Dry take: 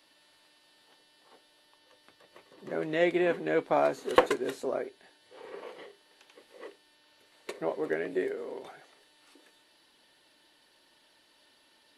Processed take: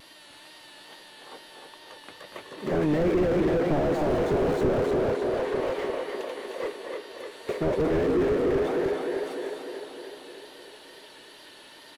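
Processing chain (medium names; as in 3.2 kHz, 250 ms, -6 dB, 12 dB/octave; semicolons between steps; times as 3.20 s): band-stop 5.1 kHz, Q 11; in parallel at -2 dB: compressor with a negative ratio -33 dBFS; on the sum: echo from a far wall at 41 m, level -9 dB; vibrato 2.3 Hz 63 cents; on a send: tape echo 303 ms, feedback 66%, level -4.5 dB, low-pass 3.6 kHz; on the sum: slew-rate limiter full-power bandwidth 17 Hz; trim +6.5 dB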